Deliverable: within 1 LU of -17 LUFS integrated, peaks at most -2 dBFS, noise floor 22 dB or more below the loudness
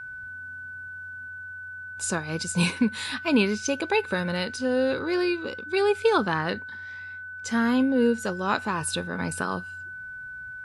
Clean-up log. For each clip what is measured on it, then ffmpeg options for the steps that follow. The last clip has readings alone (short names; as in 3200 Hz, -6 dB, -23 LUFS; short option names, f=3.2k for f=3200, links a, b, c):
steady tone 1500 Hz; tone level -36 dBFS; loudness -26.0 LUFS; peak -8.5 dBFS; loudness target -17.0 LUFS
-> -af "bandreject=f=1.5k:w=30"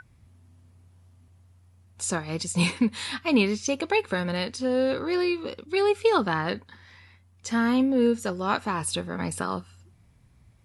steady tone none; loudness -26.0 LUFS; peak -9.0 dBFS; loudness target -17.0 LUFS
-> -af "volume=9dB,alimiter=limit=-2dB:level=0:latency=1"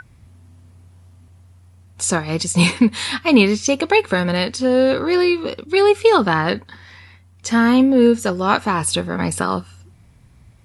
loudness -17.0 LUFS; peak -2.0 dBFS; noise floor -50 dBFS